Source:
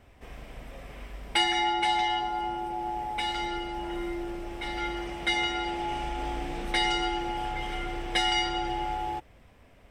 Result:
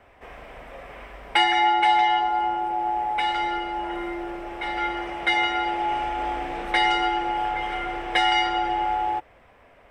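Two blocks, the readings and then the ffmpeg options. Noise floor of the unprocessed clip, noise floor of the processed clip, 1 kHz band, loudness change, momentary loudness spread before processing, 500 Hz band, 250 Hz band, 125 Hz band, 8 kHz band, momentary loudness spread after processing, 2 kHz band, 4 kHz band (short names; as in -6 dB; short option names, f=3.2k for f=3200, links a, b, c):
-56 dBFS, -54 dBFS, +8.0 dB, +6.0 dB, 18 LU, +4.0 dB, +1.5 dB, -4.5 dB, n/a, 14 LU, +6.0 dB, +2.0 dB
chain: -filter_complex "[0:a]acrossover=split=420 2500:gain=0.224 1 0.224[a][b][c];[a][b][c]amix=inputs=3:normalize=0,volume=8.5dB"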